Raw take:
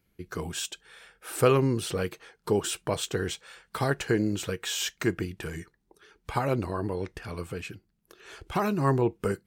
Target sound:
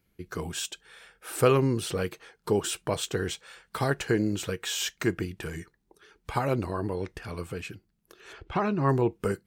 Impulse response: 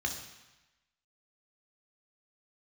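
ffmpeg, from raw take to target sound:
-filter_complex "[0:a]asplit=3[link_01][link_02][link_03];[link_01]afade=type=out:start_time=8.32:duration=0.02[link_04];[link_02]lowpass=3400,afade=type=in:start_time=8.32:duration=0.02,afade=type=out:start_time=8.88:duration=0.02[link_05];[link_03]afade=type=in:start_time=8.88:duration=0.02[link_06];[link_04][link_05][link_06]amix=inputs=3:normalize=0"

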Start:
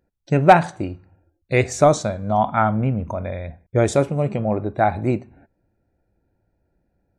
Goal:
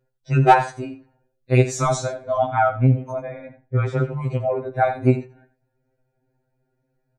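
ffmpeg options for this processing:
ffmpeg -i in.wav -filter_complex "[0:a]asplit=3[link_01][link_02][link_03];[link_01]afade=type=out:start_time=3.22:duration=0.02[link_04];[link_02]lowpass=2300,afade=type=in:start_time=3.22:duration=0.02,afade=type=out:start_time=4.21:duration=0.02[link_05];[link_03]afade=type=in:start_time=4.21:duration=0.02[link_06];[link_04][link_05][link_06]amix=inputs=3:normalize=0,asplit=2[link_07][link_08];[link_08]aecho=0:1:86:0.211[link_09];[link_07][link_09]amix=inputs=2:normalize=0,afftfilt=real='re*2.45*eq(mod(b,6),0)':imag='im*2.45*eq(mod(b,6),0)':win_size=2048:overlap=0.75,volume=1dB" out.wav

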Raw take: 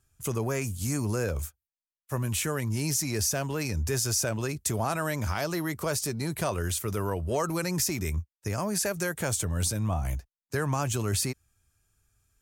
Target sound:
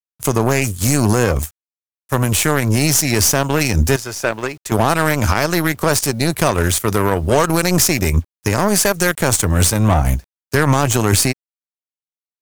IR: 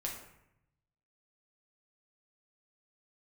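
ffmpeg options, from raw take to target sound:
-filter_complex "[0:a]asettb=1/sr,asplit=3[link_01][link_02][link_03];[link_01]atrim=end=3.964[link_04];[link_02]atrim=start=3.96:end=4.72,asetpts=PTS-STARTPTS,afade=type=in:duration=0.004:curve=qsin,afade=type=out:start_time=0.756:duration=0.004:curve=qsin,bass=frequency=250:gain=-12,treble=frequency=4000:gain=-12[link_05];[link_03]atrim=start=4.716[link_06];[link_04][link_05]acrossfade=duration=0.004:curve1=hsin:curve2=qsin[link_07];[link_07][link_06]acrossfade=duration=0.004:curve1=qsin:curve2=hsin,aeval=exprs='0.178*(cos(1*acos(clip(val(0)/0.178,-1,1)))-cos(1*PI/2))+0.0398*(cos(2*acos(clip(val(0)/0.178,-1,1)))-cos(2*PI/2))+0.00562*(cos(3*acos(clip(val(0)/0.178,-1,1)))-cos(3*PI/2))+0.0224*(cos(5*acos(clip(val(0)/0.178,-1,1)))-cos(5*PI/2))+0.0316*(cos(7*acos(clip(val(0)/0.178,-1,1)))-cos(7*PI/2))':channel_layout=same,acrusher=bits=10:mix=0:aa=0.000001,alimiter=level_in=17.5dB:limit=-1dB:release=50:level=0:latency=1,volume=-1.5dB"

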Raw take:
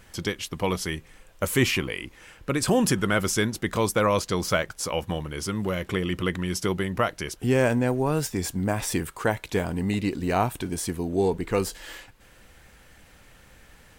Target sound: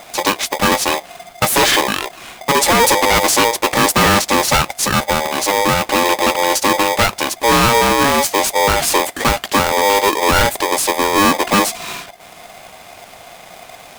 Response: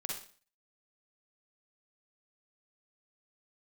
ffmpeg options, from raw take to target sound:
-af "aeval=exprs='0.398*sin(PI/2*3.16*val(0)/0.398)':channel_layout=same,aeval=exprs='val(0)*sgn(sin(2*PI*700*n/s))':channel_layout=same"

